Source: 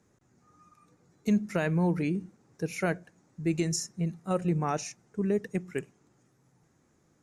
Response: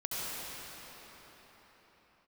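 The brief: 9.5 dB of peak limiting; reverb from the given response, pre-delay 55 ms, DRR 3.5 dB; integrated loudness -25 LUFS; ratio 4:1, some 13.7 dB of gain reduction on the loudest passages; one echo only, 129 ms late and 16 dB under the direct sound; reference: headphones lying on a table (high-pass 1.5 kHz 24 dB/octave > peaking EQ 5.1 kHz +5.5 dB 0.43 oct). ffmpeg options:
-filter_complex "[0:a]acompressor=threshold=0.0112:ratio=4,alimiter=level_in=3.35:limit=0.0631:level=0:latency=1,volume=0.299,aecho=1:1:129:0.158,asplit=2[s0][s1];[1:a]atrim=start_sample=2205,adelay=55[s2];[s1][s2]afir=irnorm=-1:irlink=0,volume=0.335[s3];[s0][s3]amix=inputs=2:normalize=0,highpass=f=1500:w=0.5412,highpass=f=1500:w=1.3066,equalizer=f=5100:t=o:w=0.43:g=5.5,volume=17.8"

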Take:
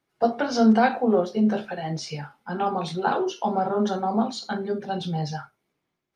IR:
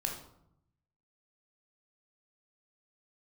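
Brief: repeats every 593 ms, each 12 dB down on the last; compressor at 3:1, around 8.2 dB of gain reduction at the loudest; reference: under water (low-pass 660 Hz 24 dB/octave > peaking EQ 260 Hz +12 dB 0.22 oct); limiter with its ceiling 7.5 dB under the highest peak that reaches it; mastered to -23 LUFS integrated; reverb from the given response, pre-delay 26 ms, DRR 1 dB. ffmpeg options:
-filter_complex "[0:a]acompressor=threshold=0.0631:ratio=3,alimiter=limit=0.0841:level=0:latency=1,aecho=1:1:593|1186|1779:0.251|0.0628|0.0157,asplit=2[s0][s1];[1:a]atrim=start_sample=2205,adelay=26[s2];[s1][s2]afir=irnorm=-1:irlink=0,volume=0.668[s3];[s0][s3]amix=inputs=2:normalize=0,lowpass=f=660:w=0.5412,lowpass=f=660:w=1.3066,equalizer=f=260:t=o:w=0.22:g=12,volume=1.78"

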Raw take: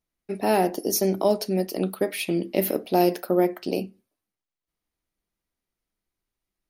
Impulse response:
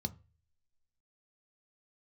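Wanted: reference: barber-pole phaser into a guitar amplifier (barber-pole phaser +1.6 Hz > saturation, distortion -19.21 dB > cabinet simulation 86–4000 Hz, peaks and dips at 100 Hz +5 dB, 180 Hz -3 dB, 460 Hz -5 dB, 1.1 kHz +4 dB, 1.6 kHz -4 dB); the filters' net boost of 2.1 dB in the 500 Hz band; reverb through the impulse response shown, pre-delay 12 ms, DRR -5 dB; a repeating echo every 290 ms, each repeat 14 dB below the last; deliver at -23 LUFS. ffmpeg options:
-filter_complex "[0:a]equalizer=f=500:t=o:g=5,aecho=1:1:290|580:0.2|0.0399,asplit=2[s0][s1];[1:a]atrim=start_sample=2205,adelay=12[s2];[s1][s2]afir=irnorm=-1:irlink=0,volume=1.88[s3];[s0][s3]amix=inputs=2:normalize=0,asplit=2[s4][s5];[s5]afreqshift=1.6[s6];[s4][s6]amix=inputs=2:normalize=1,asoftclip=threshold=0.668,highpass=86,equalizer=f=100:t=q:w=4:g=5,equalizer=f=180:t=q:w=4:g=-3,equalizer=f=460:t=q:w=4:g=-5,equalizer=f=1100:t=q:w=4:g=4,equalizer=f=1600:t=q:w=4:g=-4,lowpass=f=4000:w=0.5412,lowpass=f=4000:w=1.3066,volume=0.531"

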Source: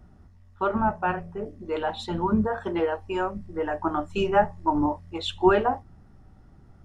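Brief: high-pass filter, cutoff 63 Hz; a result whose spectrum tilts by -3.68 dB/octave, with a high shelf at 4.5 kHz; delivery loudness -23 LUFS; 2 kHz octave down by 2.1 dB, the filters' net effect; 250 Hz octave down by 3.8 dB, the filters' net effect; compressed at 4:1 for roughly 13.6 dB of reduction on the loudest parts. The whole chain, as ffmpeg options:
-af "highpass=63,equalizer=f=250:t=o:g=-5.5,equalizer=f=2000:t=o:g=-4,highshelf=f=4500:g=6.5,acompressor=threshold=0.0251:ratio=4,volume=4.47"

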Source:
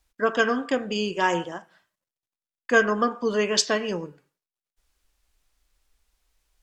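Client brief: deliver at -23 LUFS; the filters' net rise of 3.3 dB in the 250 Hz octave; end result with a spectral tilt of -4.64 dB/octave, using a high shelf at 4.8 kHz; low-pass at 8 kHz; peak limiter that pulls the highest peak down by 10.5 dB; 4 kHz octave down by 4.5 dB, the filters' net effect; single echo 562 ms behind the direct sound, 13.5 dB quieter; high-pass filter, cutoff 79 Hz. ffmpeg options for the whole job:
-af "highpass=79,lowpass=8000,equalizer=f=250:t=o:g=4,equalizer=f=4000:t=o:g=-9,highshelf=f=4800:g=5,alimiter=limit=0.158:level=0:latency=1,aecho=1:1:562:0.211,volume=1.58"

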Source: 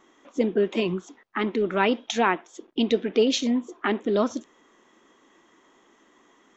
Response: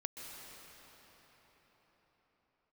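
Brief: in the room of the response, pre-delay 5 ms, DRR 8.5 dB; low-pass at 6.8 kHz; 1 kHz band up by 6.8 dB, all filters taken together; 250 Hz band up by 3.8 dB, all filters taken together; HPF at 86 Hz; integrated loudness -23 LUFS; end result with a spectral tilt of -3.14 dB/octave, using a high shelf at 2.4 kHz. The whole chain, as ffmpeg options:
-filter_complex "[0:a]highpass=86,lowpass=6800,equalizer=f=250:t=o:g=4,equalizer=f=1000:t=o:g=7,highshelf=f=2400:g=6.5,asplit=2[s0][s1];[1:a]atrim=start_sample=2205,adelay=5[s2];[s1][s2]afir=irnorm=-1:irlink=0,volume=0.398[s3];[s0][s3]amix=inputs=2:normalize=0,volume=0.75"

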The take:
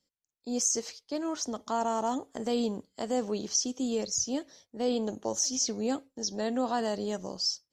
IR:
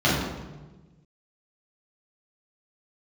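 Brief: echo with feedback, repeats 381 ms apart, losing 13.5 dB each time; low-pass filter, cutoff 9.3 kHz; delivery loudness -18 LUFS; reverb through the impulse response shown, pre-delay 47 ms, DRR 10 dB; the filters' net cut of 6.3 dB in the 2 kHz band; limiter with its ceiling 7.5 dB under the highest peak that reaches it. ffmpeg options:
-filter_complex "[0:a]lowpass=9300,equalizer=f=2000:t=o:g=-8.5,alimiter=limit=0.0631:level=0:latency=1,aecho=1:1:381|762:0.211|0.0444,asplit=2[s0][s1];[1:a]atrim=start_sample=2205,adelay=47[s2];[s1][s2]afir=irnorm=-1:irlink=0,volume=0.0376[s3];[s0][s3]amix=inputs=2:normalize=0,volume=5.62"

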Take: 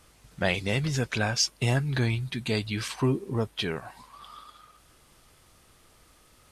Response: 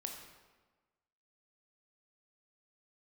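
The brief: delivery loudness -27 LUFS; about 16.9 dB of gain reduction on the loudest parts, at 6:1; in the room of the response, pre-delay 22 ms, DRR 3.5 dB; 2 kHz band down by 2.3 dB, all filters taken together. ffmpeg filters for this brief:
-filter_complex "[0:a]equalizer=f=2000:t=o:g=-3,acompressor=threshold=0.01:ratio=6,asplit=2[s0][s1];[1:a]atrim=start_sample=2205,adelay=22[s2];[s1][s2]afir=irnorm=-1:irlink=0,volume=0.841[s3];[s0][s3]amix=inputs=2:normalize=0,volume=5.62"

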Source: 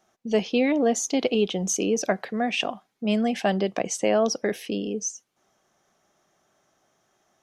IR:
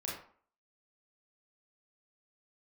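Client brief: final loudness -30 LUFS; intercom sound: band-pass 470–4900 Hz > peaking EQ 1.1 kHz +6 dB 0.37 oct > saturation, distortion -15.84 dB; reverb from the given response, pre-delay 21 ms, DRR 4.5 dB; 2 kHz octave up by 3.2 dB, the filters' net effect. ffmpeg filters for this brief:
-filter_complex "[0:a]equalizer=f=2000:t=o:g=4,asplit=2[s0][s1];[1:a]atrim=start_sample=2205,adelay=21[s2];[s1][s2]afir=irnorm=-1:irlink=0,volume=0.501[s3];[s0][s3]amix=inputs=2:normalize=0,highpass=470,lowpass=4900,equalizer=f=1100:t=o:w=0.37:g=6,asoftclip=threshold=0.133,volume=0.794"

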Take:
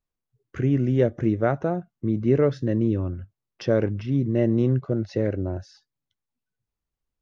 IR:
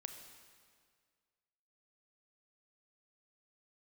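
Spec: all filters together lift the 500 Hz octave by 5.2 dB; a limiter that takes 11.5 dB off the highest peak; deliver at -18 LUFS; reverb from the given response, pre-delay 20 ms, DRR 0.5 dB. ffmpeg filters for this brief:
-filter_complex "[0:a]equalizer=f=500:t=o:g=6.5,alimiter=limit=0.158:level=0:latency=1,asplit=2[s0][s1];[1:a]atrim=start_sample=2205,adelay=20[s2];[s1][s2]afir=irnorm=-1:irlink=0,volume=1.41[s3];[s0][s3]amix=inputs=2:normalize=0,volume=2.11"

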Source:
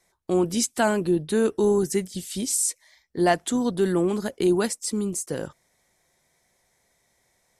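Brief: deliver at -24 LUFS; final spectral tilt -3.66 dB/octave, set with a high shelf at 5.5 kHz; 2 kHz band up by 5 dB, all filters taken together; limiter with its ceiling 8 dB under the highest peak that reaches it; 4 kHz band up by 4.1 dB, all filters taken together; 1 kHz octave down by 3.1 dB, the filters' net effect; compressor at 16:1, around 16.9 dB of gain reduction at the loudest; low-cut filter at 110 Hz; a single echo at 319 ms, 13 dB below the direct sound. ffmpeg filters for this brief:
-af "highpass=110,equalizer=f=1000:t=o:g=-7,equalizer=f=2000:t=o:g=9,equalizer=f=4000:t=o:g=5.5,highshelf=f=5500:g=-5.5,acompressor=threshold=0.02:ratio=16,alimiter=level_in=1.88:limit=0.0631:level=0:latency=1,volume=0.531,aecho=1:1:319:0.224,volume=5.96"

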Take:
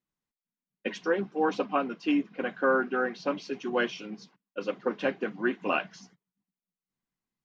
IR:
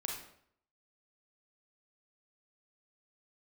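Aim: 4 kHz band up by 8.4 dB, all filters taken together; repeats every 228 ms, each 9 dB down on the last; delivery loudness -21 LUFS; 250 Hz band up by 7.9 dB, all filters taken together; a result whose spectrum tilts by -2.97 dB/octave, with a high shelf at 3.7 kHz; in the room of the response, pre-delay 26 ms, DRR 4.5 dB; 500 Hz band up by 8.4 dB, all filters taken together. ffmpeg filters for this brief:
-filter_complex "[0:a]equalizer=f=250:t=o:g=7,equalizer=f=500:t=o:g=7.5,highshelf=f=3700:g=6.5,equalizer=f=4000:t=o:g=8,aecho=1:1:228|456|684|912:0.355|0.124|0.0435|0.0152,asplit=2[s0][s1];[1:a]atrim=start_sample=2205,adelay=26[s2];[s1][s2]afir=irnorm=-1:irlink=0,volume=0.531[s3];[s0][s3]amix=inputs=2:normalize=0,volume=1.06"

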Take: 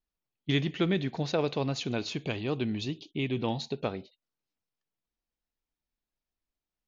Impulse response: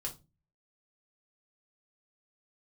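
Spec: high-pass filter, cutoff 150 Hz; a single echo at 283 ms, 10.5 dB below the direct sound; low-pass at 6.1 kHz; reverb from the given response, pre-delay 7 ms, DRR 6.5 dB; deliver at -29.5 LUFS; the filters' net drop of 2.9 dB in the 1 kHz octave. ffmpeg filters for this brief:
-filter_complex "[0:a]highpass=150,lowpass=6100,equalizer=f=1000:t=o:g=-4,aecho=1:1:283:0.299,asplit=2[s0][s1];[1:a]atrim=start_sample=2205,adelay=7[s2];[s1][s2]afir=irnorm=-1:irlink=0,volume=0.501[s3];[s0][s3]amix=inputs=2:normalize=0,volume=1.19"

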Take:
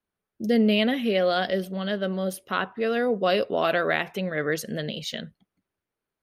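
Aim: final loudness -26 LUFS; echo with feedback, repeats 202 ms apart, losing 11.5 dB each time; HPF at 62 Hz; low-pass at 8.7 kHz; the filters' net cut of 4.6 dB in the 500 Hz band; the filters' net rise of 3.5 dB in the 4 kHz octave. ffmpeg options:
-af "highpass=62,lowpass=8700,equalizer=f=500:t=o:g=-5.5,equalizer=f=4000:t=o:g=5,aecho=1:1:202|404|606:0.266|0.0718|0.0194,volume=1.06"

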